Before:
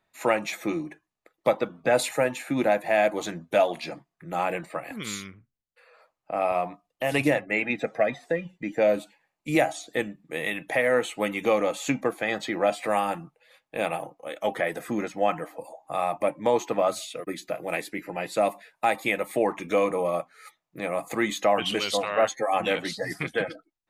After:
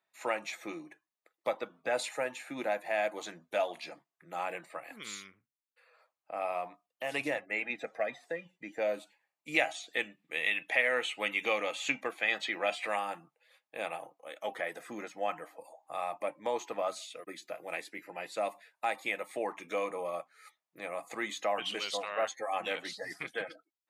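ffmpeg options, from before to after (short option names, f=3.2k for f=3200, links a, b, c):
-filter_complex "[0:a]asettb=1/sr,asplit=3[a][b][c];[a]atrim=end=9.544[d];[b]atrim=start=9.54:end=12.96,asetpts=PTS-STARTPTS,afade=t=in:d=0.004:c=qsin,afade=t=out:st=3.416:d=0.004:c=qsin,equalizer=f=2.7k:t=o:w=1.2:g=10[e];[c]atrim=start=12.956[f];[d][e]acrossfade=d=0.004:c1=hsin:c2=qsin[g];[g][f]acrossfade=d=0.004:c1=qsin:c2=hsin,acrossover=split=9400[h][i];[i]acompressor=threshold=-59dB:ratio=4:attack=1:release=60[j];[h][j]amix=inputs=2:normalize=0,highpass=f=630:p=1,volume=-7dB"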